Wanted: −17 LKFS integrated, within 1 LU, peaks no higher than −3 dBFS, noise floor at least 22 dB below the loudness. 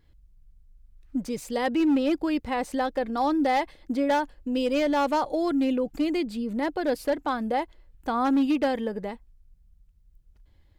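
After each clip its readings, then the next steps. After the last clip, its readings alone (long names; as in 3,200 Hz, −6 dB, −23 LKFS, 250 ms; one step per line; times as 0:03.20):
share of clipped samples 1.2%; peaks flattened at −18.0 dBFS; integrated loudness −26.5 LKFS; sample peak −18.0 dBFS; target loudness −17.0 LKFS
→ clipped peaks rebuilt −18 dBFS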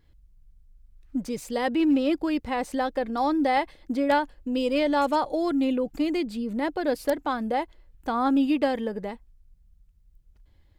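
share of clipped samples 0.0%; integrated loudness −26.0 LKFS; sample peak −9.0 dBFS; target loudness −17.0 LKFS
→ level +9 dB
brickwall limiter −3 dBFS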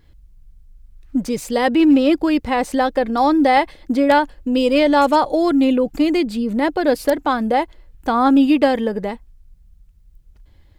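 integrated loudness −17.0 LKFS; sample peak −3.0 dBFS; background noise floor −51 dBFS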